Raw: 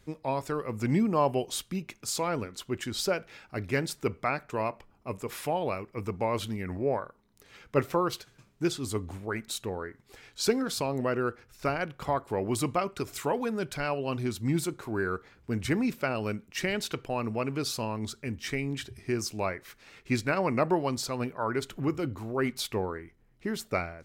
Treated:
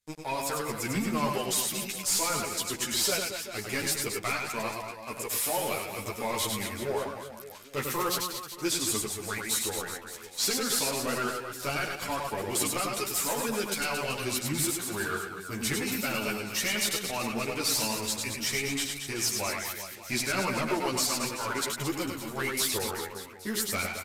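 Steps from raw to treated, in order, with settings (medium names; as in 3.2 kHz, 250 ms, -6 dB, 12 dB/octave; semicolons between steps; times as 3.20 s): pre-emphasis filter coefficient 0.9; waveshaping leveller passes 5; reverse bouncing-ball echo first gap 100 ms, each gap 1.25×, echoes 5; resampled via 32 kHz; three-phase chorus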